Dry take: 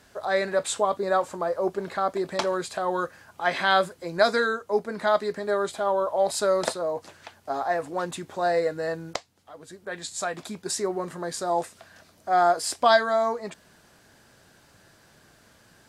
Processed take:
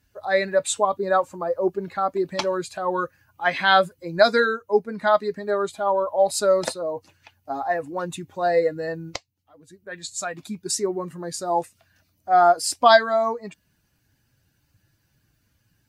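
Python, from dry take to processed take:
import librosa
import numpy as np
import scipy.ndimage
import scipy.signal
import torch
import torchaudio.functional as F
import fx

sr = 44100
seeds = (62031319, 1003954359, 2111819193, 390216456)

y = fx.bin_expand(x, sr, power=1.5)
y = y * 10.0 ** (6.0 / 20.0)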